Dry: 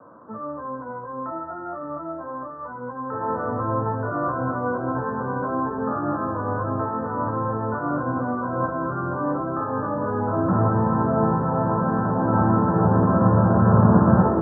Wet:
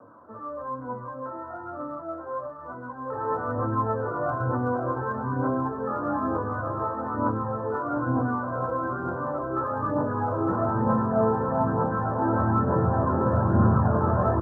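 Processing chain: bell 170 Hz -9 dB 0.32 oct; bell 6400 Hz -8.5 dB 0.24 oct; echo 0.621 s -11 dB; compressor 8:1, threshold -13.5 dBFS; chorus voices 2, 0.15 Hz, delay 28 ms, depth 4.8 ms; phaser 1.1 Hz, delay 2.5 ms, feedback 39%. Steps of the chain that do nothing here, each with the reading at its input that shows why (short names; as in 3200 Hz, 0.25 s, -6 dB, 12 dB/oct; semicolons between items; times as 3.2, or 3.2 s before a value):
bell 6400 Hz: input band ends at 1600 Hz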